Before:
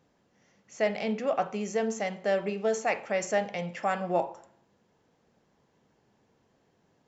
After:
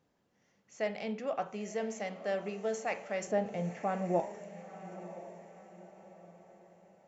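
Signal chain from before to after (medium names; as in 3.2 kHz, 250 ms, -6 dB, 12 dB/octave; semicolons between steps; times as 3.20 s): 3.27–4.20 s: tilt shelf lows +8.5 dB; on a send: echo that smears into a reverb 974 ms, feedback 42%, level -13 dB; on the sum: trim -7 dB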